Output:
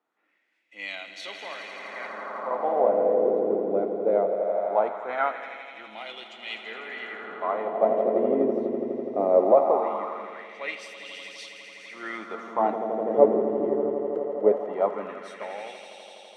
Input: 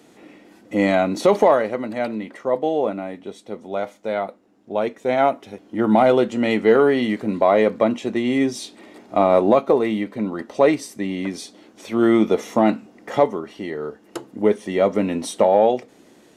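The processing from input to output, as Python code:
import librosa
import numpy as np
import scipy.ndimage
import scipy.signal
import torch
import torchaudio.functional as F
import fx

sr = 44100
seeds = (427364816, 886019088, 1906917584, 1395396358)

p1 = x + fx.echo_swell(x, sr, ms=83, loudest=5, wet_db=-9.5, dry=0)
p2 = fx.rider(p1, sr, range_db=10, speed_s=2.0)
p3 = fx.wah_lfo(p2, sr, hz=0.2, low_hz=380.0, high_hz=3000.0, q=2.3)
p4 = fx.band_widen(p3, sr, depth_pct=40)
y = p4 * librosa.db_to_amplitude(-2.0)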